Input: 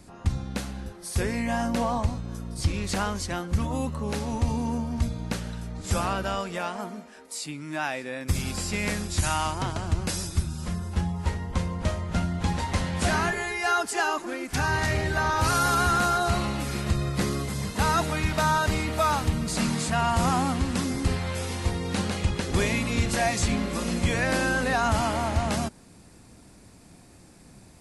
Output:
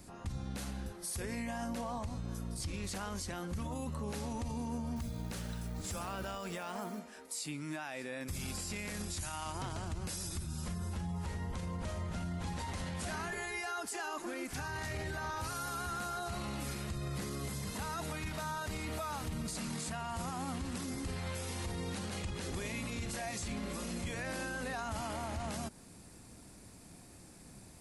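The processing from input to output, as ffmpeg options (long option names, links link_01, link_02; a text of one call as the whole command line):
ffmpeg -i in.wav -filter_complex "[0:a]asettb=1/sr,asplit=3[link_01][link_02][link_03];[link_01]atrim=end=4.964[link_04];[link_02]atrim=start=4.96:end=6.99,asetpts=PTS-STARTPTS,afade=type=in:duration=0.004:curve=qsin,afade=type=out:start_time=2.026:duration=0.004:curve=qsin,acrusher=bits=7:mode=log:mix=0:aa=0.000001[link_05];[link_03]atrim=start=6.986[link_06];[link_04][link_05]acrossfade=duration=0.004:curve1=hsin:curve2=qsin[link_07];[link_07][link_06]acrossfade=duration=0.004:curve1=qsin:curve2=hsin,acompressor=threshold=-30dB:ratio=2,highshelf=frequency=9400:gain=9,alimiter=level_in=3dB:limit=-24dB:level=0:latency=1:release=32,volume=-3dB,volume=-4dB" out.wav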